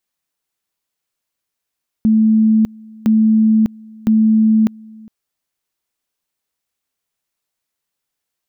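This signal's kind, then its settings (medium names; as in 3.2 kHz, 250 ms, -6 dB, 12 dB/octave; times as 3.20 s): two-level tone 219 Hz -8.5 dBFS, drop 26 dB, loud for 0.60 s, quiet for 0.41 s, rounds 3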